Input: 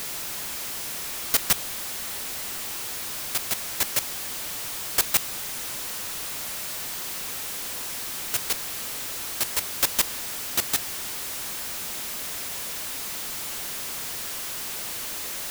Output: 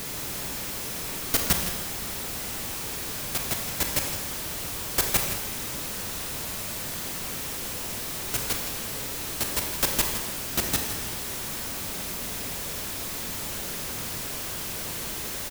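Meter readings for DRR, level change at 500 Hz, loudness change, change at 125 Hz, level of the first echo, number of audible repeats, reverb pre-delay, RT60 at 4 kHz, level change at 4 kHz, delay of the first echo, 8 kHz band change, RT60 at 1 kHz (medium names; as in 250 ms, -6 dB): 2.0 dB, +4.0 dB, -1.0 dB, +9.5 dB, -11.0 dB, 1, 26 ms, 1.1 s, -1.0 dB, 163 ms, -1.0 dB, 1.1 s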